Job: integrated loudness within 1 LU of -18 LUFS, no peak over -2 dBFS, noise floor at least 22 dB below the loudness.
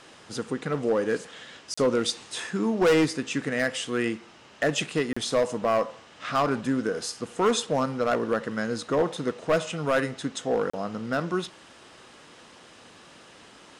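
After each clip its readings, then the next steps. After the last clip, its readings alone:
clipped samples 1.2%; clipping level -16.5 dBFS; dropouts 3; longest dropout 35 ms; loudness -27.0 LUFS; peak level -16.5 dBFS; loudness target -18.0 LUFS
-> clip repair -16.5 dBFS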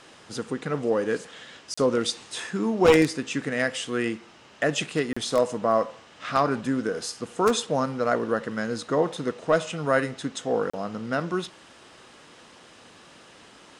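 clipped samples 0.0%; dropouts 3; longest dropout 35 ms
-> interpolate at 1.74/5.13/10.70 s, 35 ms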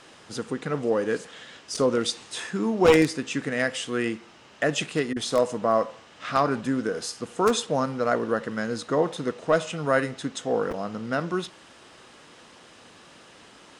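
dropouts 0; loudness -26.0 LUFS; peak level -7.5 dBFS; loudness target -18.0 LUFS
-> trim +8 dB; peak limiter -2 dBFS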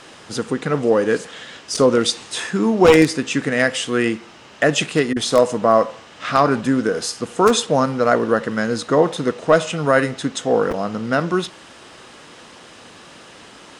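loudness -18.5 LUFS; peak level -2.0 dBFS; noise floor -43 dBFS

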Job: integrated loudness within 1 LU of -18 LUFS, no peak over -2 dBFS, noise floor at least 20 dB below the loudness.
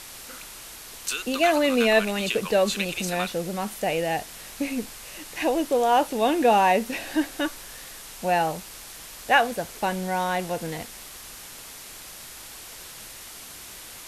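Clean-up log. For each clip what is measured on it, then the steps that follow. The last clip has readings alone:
noise floor -42 dBFS; noise floor target -45 dBFS; loudness -24.5 LUFS; peak level -6.0 dBFS; loudness target -18.0 LUFS
-> noise print and reduce 6 dB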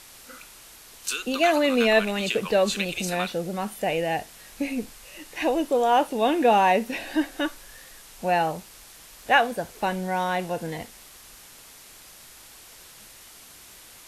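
noise floor -48 dBFS; loudness -24.5 LUFS; peak level -6.0 dBFS; loudness target -18.0 LUFS
-> trim +6.5 dB; peak limiter -2 dBFS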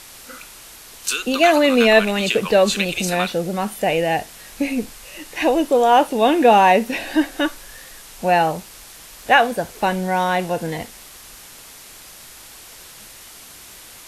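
loudness -18.0 LUFS; peak level -2.0 dBFS; noise floor -42 dBFS

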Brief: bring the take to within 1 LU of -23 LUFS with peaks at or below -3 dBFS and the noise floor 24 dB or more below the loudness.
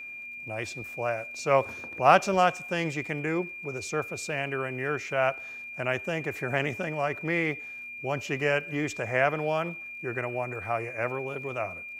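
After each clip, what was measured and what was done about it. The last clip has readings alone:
tick rate 45 per s; steady tone 2.4 kHz; tone level -38 dBFS; loudness -29.0 LUFS; peak level -5.0 dBFS; loudness target -23.0 LUFS
-> de-click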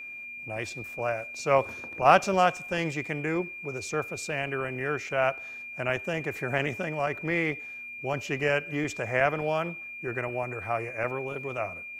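tick rate 0.17 per s; steady tone 2.4 kHz; tone level -38 dBFS
-> band-stop 2.4 kHz, Q 30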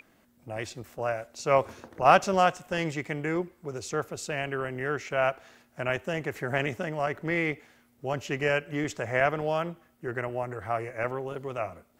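steady tone not found; loudness -29.5 LUFS; peak level -5.0 dBFS; loudness target -23.0 LUFS
-> trim +6.5 dB; peak limiter -3 dBFS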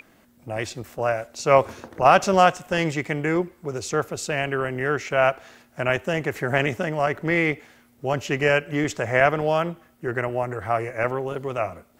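loudness -23.5 LUFS; peak level -3.0 dBFS; noise floor -58 dBFS

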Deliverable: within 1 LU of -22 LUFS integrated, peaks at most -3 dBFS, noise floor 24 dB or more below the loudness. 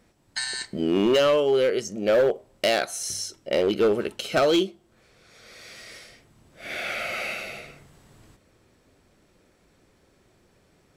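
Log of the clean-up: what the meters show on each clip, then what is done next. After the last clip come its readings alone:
clipped samples 1.6%; clipping level -15.5 dBFS; loudness -24.0 LUFS; peak level -15.5 dBFS; loudness target -22.0 LUFS
-> clip repair -15.5 dBFS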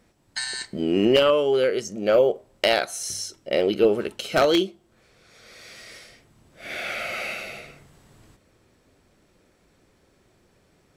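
clipped samples 0.0%; loudness -23.0 LUFS; peak level -6.5 dBFS; loudness target -22.0 LUFS
-> trim +1 dB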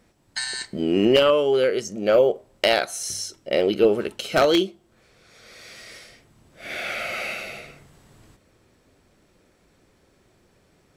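loudness -22.0 LUFS; peak level -5.5 dBFS; noise floor -62 dBFS

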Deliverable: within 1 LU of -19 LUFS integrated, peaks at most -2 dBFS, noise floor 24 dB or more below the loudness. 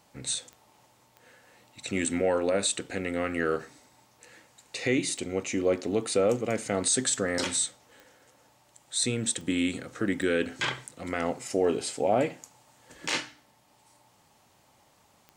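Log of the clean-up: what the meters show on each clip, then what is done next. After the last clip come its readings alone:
clicks found 7; loudness -28.5 LUFS; peak level -14.0 dBFS; loudness target -19.0 LUFS
-> de-click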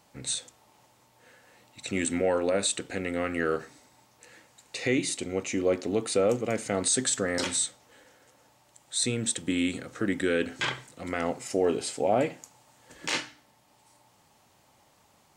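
clicks found 0; loudness -28.5 LUFS; peak level -14.0 dBFS; loudness target -19.0 LUFS
-> trim +9.5 dB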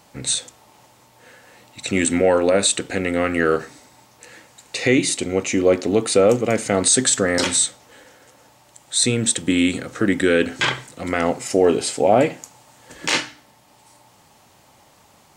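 loudness -19.0 LUFS; peak level -4.5 dBFS; noise floor -54 dBFS

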